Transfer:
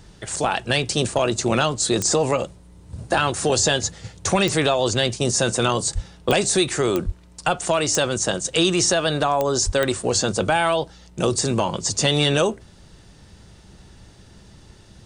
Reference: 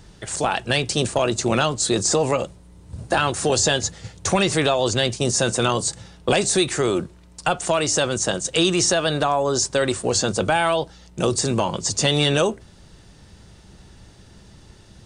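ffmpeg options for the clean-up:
-filter_complex "[0:a]adeclick=t=4,asplit=3[s0][s1][s2];[s0]afade=t=out:st=5.94:d=0.02[s3];[s1]highpass=f=140:w=0.5412,highpass=f=140:w=1.3066,afade=t=in:st=5.94:d=0.02,afade=t=out:st=6.06:d=0.02[s4];[s2]afade=t=in:st=6.06:d=0.02[s5];[s3][s4][s5]amix=inputs=3:normalize=0,asplit=3[s6][s7][s8];[s6]afade=t=out:st=7.05:d=0.02[s9];[s7]highpass=f=140:w=0.5412,highpass=f=140:w=1.3066,afade=t=in:st=7.05:d=0.02,afade=t=out:st=7.17:d=0.02[s10];[s8]afade=t=in:st=7.17:d=0.02[s11];[s9][s10][s11]amix=inputs=3:normalize=0,asplit=3[s12][s13][s14];[s12]afade=t=out:st=9.65:d=0.02[s15];[s13]highpass=f=140:w=0.5412,highpass=f=140:w=1.3066,afade=t=in:st=9.65:d=0.02,afade=t=out:st=9.77:d=0.02[s16];[s14]afade=t=in:st=9.77:d=0.02[s17];[s15][s16][s17]amix=inputs=3:normalize=0"

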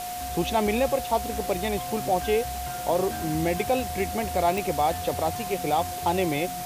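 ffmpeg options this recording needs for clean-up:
-af "adeclick=t=4,bandreject=f=53.8:t=h:w=4,bandreject=f=107.6:t=h:w=4,bandreject=f=161.4:t=h:w=4,bandreject=f=215.2:t=h:w=4,bandreject=f=269:t=h:w=4,bandreject=f=720:w=30,afwtdn=0.013"

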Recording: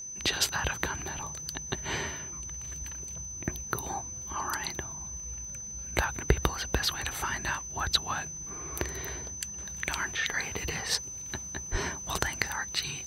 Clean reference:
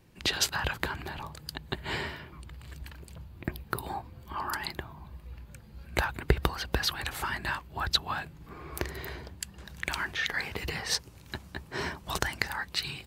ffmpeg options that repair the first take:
-filter_complex "[0:a]adeclick=t=4,bandreject=f=6100:w=30,asplit=3[s0][s1][s2];[s0]afade=t=out:st=11.71:d=0.02[s3];[s1]highpass=f=140:w=0.5412,highpass=f=140:w=1.3066,afade=t=in:st=11.71:d=0.02,afade=t=out:st=11.83:d=0.02[s4];[s2]afade=t=in:st=11.83:d=0.02[s5];[s3][s4][s5]amix=inputs=3:normalize=0"

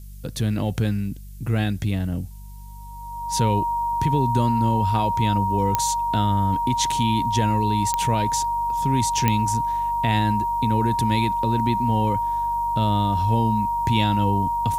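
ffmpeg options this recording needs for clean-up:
-af "adeclick=t=4,bandreject=f=48.8:t=h:w=4,bandreject=f=97.6:t=h:w=4,bandreject=f=146.4:t=h:w=4,bandreject=f=195.2:t=h:w=4,bandreject=f=940:w=30,agate=range=0.0891:threshold=0.0501"

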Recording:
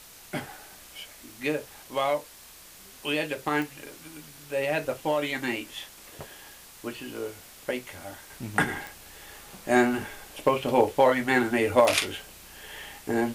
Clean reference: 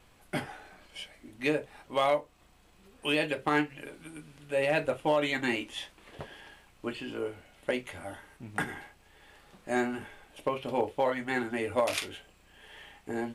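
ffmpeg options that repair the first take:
-af "adeclick=t=4,afwtdn=0.004,asetnsamples=n=441:p=0,asendcmd='8.3 volume volume -8dB',volume=1"

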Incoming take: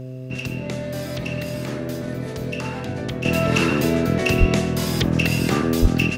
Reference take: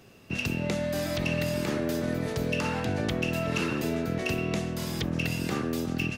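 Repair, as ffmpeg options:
-filter_complex "[0:a]bandreject=f=128.7:t=h:w=4,bandreject=f=257.4:t=h:w=4,bandreject=f=386.1:t=h:w=4,bandreject=f=514.8:t=h:w=4,bandreject=f=643.5:t=h:w=4,asplit=3[s0][s1][s2];[s0]afade=t=out:st=4.39:d=0.02[s3];[s1]highpass=f=140:w=0.5412,highpass=f=140:w=1.3066,afade=t=in:st=4.39:d=0.02,afade=t=out:st=4.51:d=0.02[s4];[s2]afade=t=in:st=4.51:d=0.02[s5];[s3][s4][s5]amix=inputs=3:normalize=0,asplit=3[s6][s7][s8];[s6]afade=t=out:st=5.81:d=0.02[s9];[s7]highpass=f=140:w=0.5412,highpass=f=140:w=1.3066,afade=t=in:st=5.81:d=0.02,afade=t=out:st=5.93:d=0.02[s10];[s8]afade=t=in:st=5.93:d=0.02[s11];[s9][s10][s11]amix=inputs=3:normalize=0,asetnsamples=n=441:p=0,asendcmd='3.25 volume volume -9.5dB',volume=1"

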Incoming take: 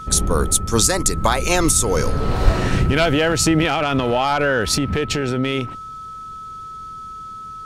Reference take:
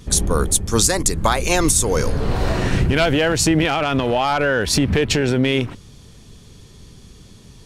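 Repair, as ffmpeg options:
-filter_complex "[0:a]bandreject=f=1300:w=30,asplit=3[s0][s1][s2];[s0]afade=t=out:st=2.44:d=0.02[s3];[s1]highpass=f=140:w=0.5412,highpass=f=140:w=1.3066,afade=t=in:st=2.44:d=0.02,afade=t=out:st=2.56:d=0.02[s4];[s2]afade=t=in:st=2.56:d=0.02[s5];[s3][s4][s5]amix=inputs=3:normalize=0,asetnsamples=n=441:p=0,asendcmd='4.75 volume volume 3.5dB',volume=1"

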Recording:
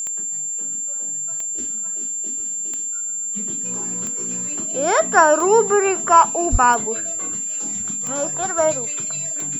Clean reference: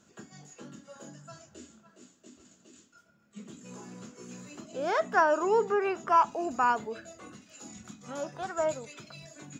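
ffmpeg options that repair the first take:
-filter_complex "[0:a]adeclick=t=4,bandreject=f=7300:w=30,asplit=3[s0][s1][s2];[s0]afade=t=out:st=6.51:d=0.02[s3];[s1]highpass=f=140:w=0.5412,highpass=f=140:w=1.3066,afade=t=in:st=6.51:d=0.02,afade=t=out:st=6.63:d=0.02[s4];[s2]afade=t=in:st=6.63:d=0.02[s5];[s3][s4][s5]amix=inputs=3:normalize=0,asetnsamples=n=441:p=0,asendcmd='1.58 volume volume -10.5dB',volume=1"

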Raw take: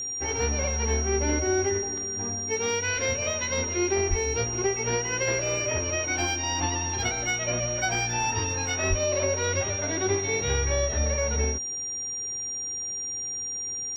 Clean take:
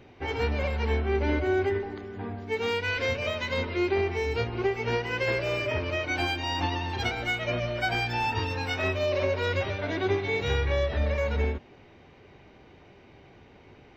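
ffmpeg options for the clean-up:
-filter_complex "[0:a]bandreject=f=5700:w=30,asplit=3[s0][s1][s2];[s0]afade=t=out:st=4.09:d=0.02[s3];[s1]highpass=f=140:w=0.5412,highpass=f=140:w=1.3066,afade=t=in:st=4.09:d=0.02,afade=t=out:st=4.21:d=0.02[s4];[s2]afade=t=in:st=4.21:d=0.02[s5];[s3][s4][s5]amix=inputs=3:normalize=0,asplit=3[s6][s7][s8];[s6]afade=t=out:st=8.89:d=0.02[s9];[s7]highpass=f=140:w=0.5412,highpass=f=140:w=1.3066,afade=t=in:st=8.89:d=0.02,afade=t=out:st=9.01:d=0.02[s10];[s8]afade=t=in:st=9.01:d=0.02[s11];[s9][s10][s11]amix=inputs=3:normalize=0"

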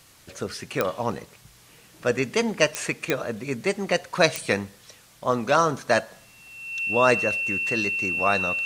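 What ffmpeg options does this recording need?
-af "adeclick=t=4,bandreject=f=2700:w=30"

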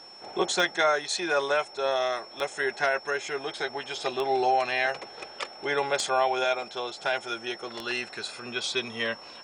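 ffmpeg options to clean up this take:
-af "adeclick=t=4,bandreject=f=5400:w=30"

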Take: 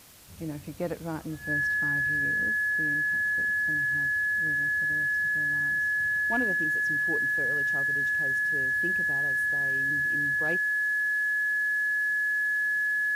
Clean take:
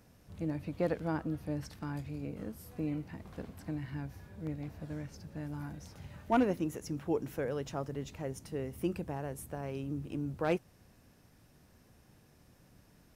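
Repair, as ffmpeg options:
-af "adeclick=t=4,bandreject=f=1700:w=30,afwtdn=0.0025,asetnsamples=n=441:p=0,asendcmd='2.56 volume volume 4dB',volume=1"

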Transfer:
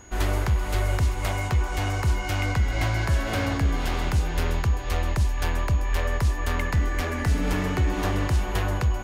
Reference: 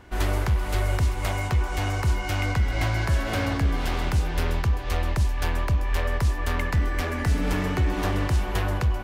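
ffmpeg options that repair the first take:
-af "bandreject=f=6700:w=30"

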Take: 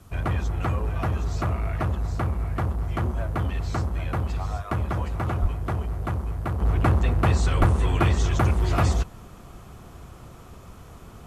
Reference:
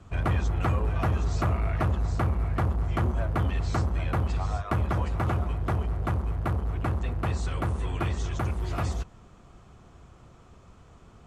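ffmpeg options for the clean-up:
-filter_complex "[0:a]asplit=3[s0][s1][s2];[s0]afade=t=out:st=5.41:d=0.02[s3];[s1]highpass=f=140:w=0.5412,highpass=f=140:w=1.3066,afade=t=in:st=5.41:d=0.02,afade=t=out:st=5.53:d=0.02[s4];[s2]afade=t=in:st=5.53:d=0.02[s5];[s3][s4][s5]amix=inputs=3:normalize=0,asplit=3[s6][s7][s8];[s6]afade=t=out:st=7.59:d=0.02[s9];[s7]highpass=f=140:w=0.5412,highpass=f=140:w=1.3066,afade=t=in:st=7.59:d=0.02,afade=t=out:st=7.71:d=0.02[s10];[s8]afade=t=in:st=7.71:d=0.02[s11];[s9][s10][s11]amix=inputs=3:normalize=0,agate=range=0.0891:threshold=0.0158,asetnsamples=n=441:p=0,asendcmd='6.6 volume volume -8dB',volume=1"

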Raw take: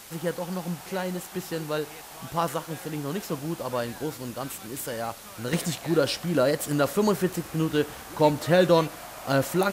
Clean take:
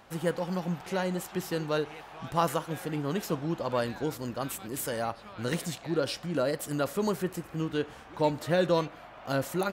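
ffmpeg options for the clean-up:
-af "afwtdn=0.0056,asetnsamples=n=441:p=0,asendcmd='5.53 volume volume -6dB',volume=1"

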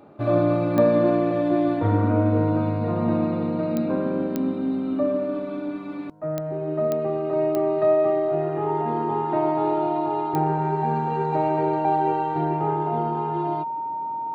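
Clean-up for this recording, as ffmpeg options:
-af "adeclick=t=4,bandreject=f=920:w=30"

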